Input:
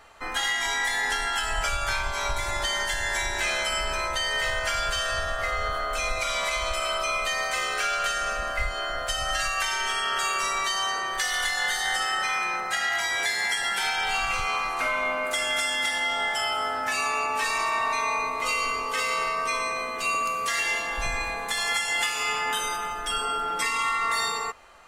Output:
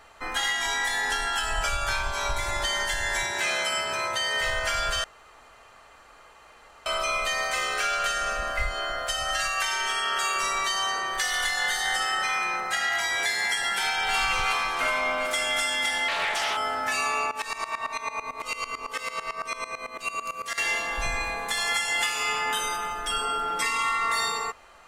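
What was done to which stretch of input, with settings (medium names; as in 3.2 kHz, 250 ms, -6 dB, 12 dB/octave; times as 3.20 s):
0.51–2.33 s: band-stop 2.1 kHz
3.23–4.41 s: high-pass 100 Hz 24 dB/octave
5.04–6.86 s: room tone
8.92–10.36 s: bass shelf 170 Hz -6.5 dB
13.71–14.15 s: echo throw 370 ms, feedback 70%, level -4.5 dB
16.08–16.57 s: loudspeaker Doppler distortion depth 0.31 ms
17.31–20.58 s: sawtooth tremolo in dB swelling 9 Hz, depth 18 dB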